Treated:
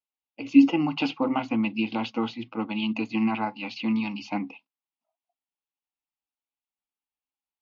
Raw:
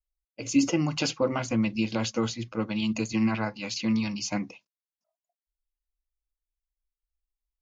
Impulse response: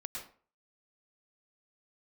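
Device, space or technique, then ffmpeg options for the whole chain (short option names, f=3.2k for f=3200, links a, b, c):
kitchen radio: -af "highpass=220,equalizer=f=270:t=q:w=4:g=9,equalizer=f=390:t=q:w=4:g=-5,equalizer=f=560:t=q:w=4:g=-8,equalizer=f=830:t=q:w=4:g=9,equalizer=f=1.7k:t=q:w=4:g=-10,equalizer=f=2.7k:t=q:w=4:g=4,lowpass=f=3.5k:w=0.5412,lowpass=f=3.5k:w=1.3066,volume=1dB"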